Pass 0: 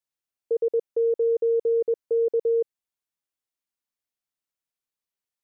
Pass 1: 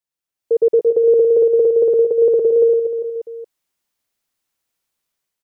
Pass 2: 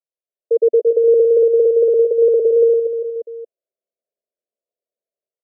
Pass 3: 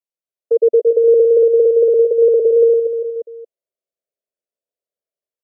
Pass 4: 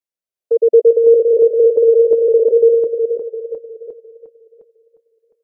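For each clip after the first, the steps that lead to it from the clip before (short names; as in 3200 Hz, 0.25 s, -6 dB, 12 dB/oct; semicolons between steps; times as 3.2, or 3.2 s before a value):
AGC gain up to 11 dB; reverse bouncing-ball echo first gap 0.11 s, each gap 1.2×, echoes 5
elliptic band-pass 240–670 Hz; comb 1.8 ms, depth 94%; gain -3.5 dB
dynamic EQ 500 Hz, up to +4 dB, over -26 dBFS, Q 1.2; gain -2.5 dB
regenerating reverse delay 0.355 s, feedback 44%, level -4.5 dB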